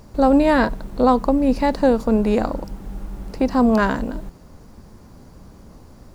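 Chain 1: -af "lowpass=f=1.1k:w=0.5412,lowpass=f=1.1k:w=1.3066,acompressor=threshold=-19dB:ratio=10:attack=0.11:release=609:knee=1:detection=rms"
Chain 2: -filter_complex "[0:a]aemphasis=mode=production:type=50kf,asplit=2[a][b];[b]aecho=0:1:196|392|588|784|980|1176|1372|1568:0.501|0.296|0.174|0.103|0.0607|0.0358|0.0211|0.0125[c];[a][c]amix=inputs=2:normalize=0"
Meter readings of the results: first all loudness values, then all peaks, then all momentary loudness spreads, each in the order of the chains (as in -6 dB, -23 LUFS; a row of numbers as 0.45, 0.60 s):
-29.0, -17.5 LUFS; -17.5, -2.0 dBFS; 20, 15 LU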